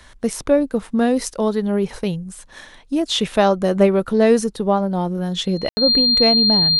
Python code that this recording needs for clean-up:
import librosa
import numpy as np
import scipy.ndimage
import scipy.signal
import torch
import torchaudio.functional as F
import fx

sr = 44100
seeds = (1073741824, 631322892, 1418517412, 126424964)

y = fx.notch(x, sr, hz=4200.0, q=30.0)
y = fx.fix_ambience(y, sr, seeds[0], print_start_s=2.41, print_end_s=2.91, start_s=5.69, end_s=5.77)